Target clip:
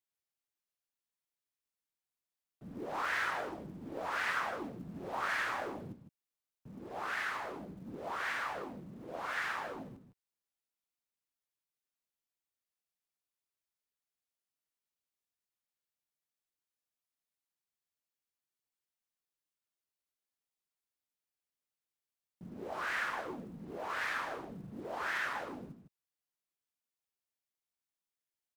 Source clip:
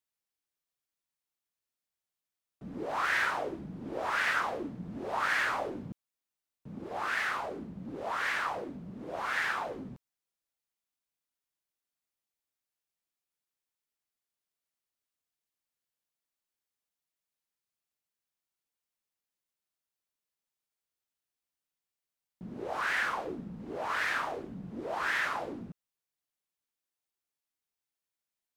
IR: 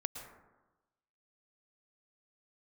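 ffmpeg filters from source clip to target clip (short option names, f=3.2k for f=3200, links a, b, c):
-filter_complex "[0:a]acrusher=bits=8:mode=log:mix=0:aa=0.000001,aecho=1:1:156:0.335,asplit=2[a][b];[b]asetrate=37084,aresample=44100,atempo=1.18921,volume=-7dB[c];[a][c]amix=inputs=2:normalize=0,volume=-6dB"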